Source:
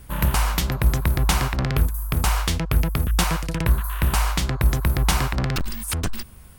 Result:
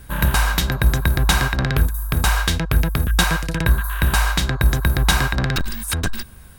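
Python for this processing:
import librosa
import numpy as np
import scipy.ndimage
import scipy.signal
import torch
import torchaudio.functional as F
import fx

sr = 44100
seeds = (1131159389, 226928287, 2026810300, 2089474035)

y = fx.small_body(x, sr, hz=(1600.0, 3800.0), ring_ms=55, db=15)
y = F.gain(torch.from_numpy(y), 2.5).numpy()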